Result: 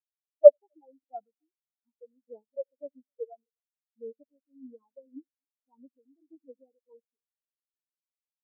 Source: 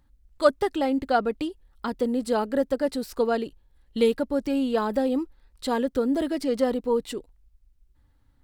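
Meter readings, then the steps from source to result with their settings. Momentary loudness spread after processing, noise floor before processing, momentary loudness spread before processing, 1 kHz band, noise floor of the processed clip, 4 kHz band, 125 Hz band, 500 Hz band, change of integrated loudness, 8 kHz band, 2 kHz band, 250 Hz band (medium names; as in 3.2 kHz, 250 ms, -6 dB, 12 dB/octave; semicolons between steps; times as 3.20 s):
0 LU, -63 dBFS, 11 LU, -22.0 dB, under -85 dBFS, under -40 dB, no reading, -1.5 dB, +7.0 dB, under -35 dB, under -40 dB, -28.0 dB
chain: phaser 0.85 Hz, delay 4.2 ms, feedback 46%; multi-head delay 86 ms, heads first and third, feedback 49%, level -17 dB; spectral contrast expander 4:1; trim -1 dB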